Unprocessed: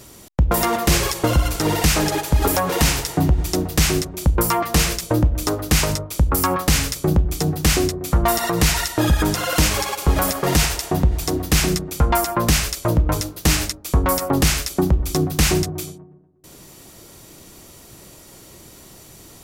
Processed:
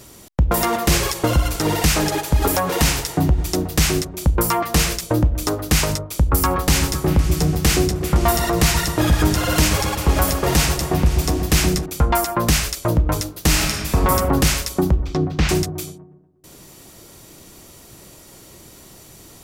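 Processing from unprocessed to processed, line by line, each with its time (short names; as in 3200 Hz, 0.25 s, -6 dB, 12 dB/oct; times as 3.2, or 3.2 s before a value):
6.12–11.86 repeats that get brighter 0.128 s, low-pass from 200 Hz, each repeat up 2 oct, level -6 dB
13.49–14.09 reverb throw, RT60 1.6 s, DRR -1.5 dB
15–15.49 air absorption 190 m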